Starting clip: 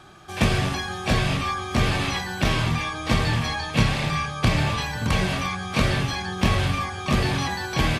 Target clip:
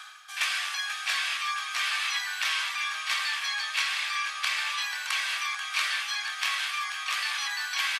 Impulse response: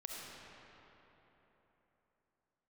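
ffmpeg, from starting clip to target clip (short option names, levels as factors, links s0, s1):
-af "highpass=f=1300:w=0.5412,highpass=f=1300:w=1.3066,areverse,acompressor=mode=upward:threshold=0.0282:ratio=2.5,areverse,aecho=1:1:486:0.282"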